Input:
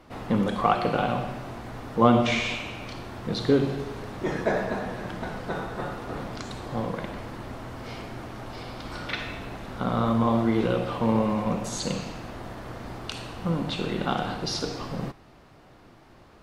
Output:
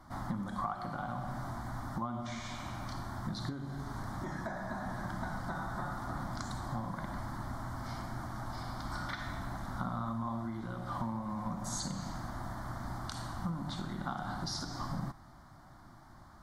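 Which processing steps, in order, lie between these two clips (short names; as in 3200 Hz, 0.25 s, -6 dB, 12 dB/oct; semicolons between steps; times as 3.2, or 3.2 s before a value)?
compressor 20:1, threshold -30 dBFS, peak gain reduction 19 dB; fixed phaser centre 1100 Hz, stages 4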